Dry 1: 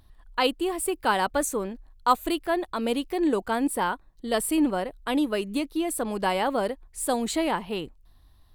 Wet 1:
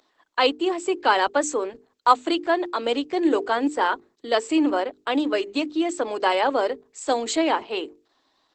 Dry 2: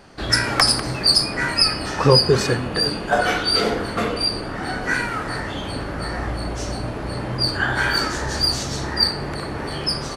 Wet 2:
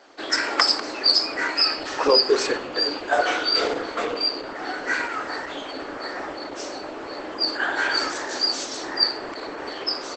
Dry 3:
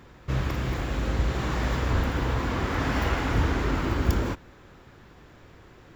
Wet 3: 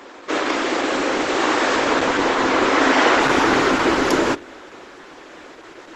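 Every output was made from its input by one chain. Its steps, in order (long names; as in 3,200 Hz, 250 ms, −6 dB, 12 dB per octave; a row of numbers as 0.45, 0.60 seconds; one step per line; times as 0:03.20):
Butterworth high-pass 270 Hz 48 dB per octave
mains-hum notches 50/100/150/200/250/300/350/400/450 Hz
Opus 12 kbit/s 48,000 Hz
normalise the peak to −3 dBFS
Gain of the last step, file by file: +5.0, −1.5, +15.0 decibels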